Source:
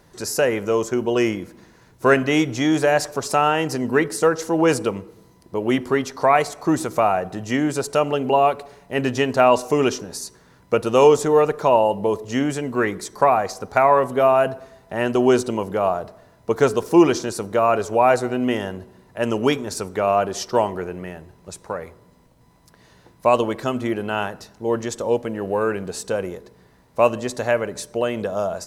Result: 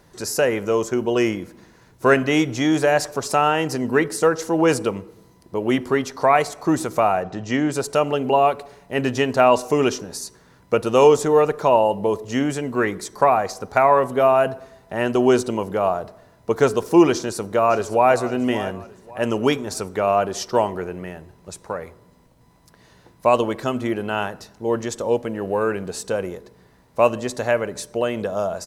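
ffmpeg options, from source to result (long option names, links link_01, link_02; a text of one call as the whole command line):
ffmpeg -i in.wav -filter_complex "[0:a]asettb=1/sr,asplit=3[link_01][link_02][link_03];[link_01]atrim=end=7.234[link_04];[link_02]atrim=start=7.23:end=7.72,asetpts=PTS-STARTPTS,afade=type=in:duration=0.004:curve=qsin,afade=type=out:start_time=0.486:duration=0.004:curve=qsin,lowpass=frequency=6800:width=0.5412,lowpass=frequency=6800:width=1.3066[link_05];[link_03]atrim=start=7.716[link_06];[link_04][link_05]acrossfade=duration=0.004:curve1=hsin:curve2=qsin[link_07];[link_07][link_06]acrossfade=duration=0.004:curve1=qsin:curve2=hsin,asplit=2[link_08][link_09];[link_09]afade=type=in:start_time=17.13:duration=0.01,afade=type=out:start_time=18.14:duration=0.01,aecho=0:1:560|1120|1680:0.177828|0.0622398|0.0217839[link_10];[link_08][link_10]amix=inputs=2:normalize=0" out.wav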